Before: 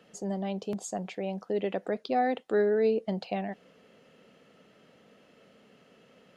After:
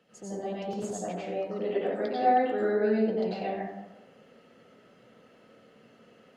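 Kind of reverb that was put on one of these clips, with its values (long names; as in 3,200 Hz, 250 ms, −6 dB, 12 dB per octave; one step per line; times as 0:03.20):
dense smooth reverb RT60 1 s, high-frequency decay 0.45×, pre-delay 80 ms, DRR −9 dB
level −8 dB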